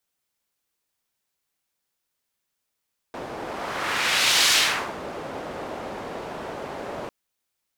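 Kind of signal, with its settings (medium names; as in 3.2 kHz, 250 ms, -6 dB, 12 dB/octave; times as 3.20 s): whoosh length 3.95 s, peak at 1.38 s, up 1.22 s, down 0.47 s, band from 590 Hz, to 4 kHz, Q 1, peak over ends 16 dB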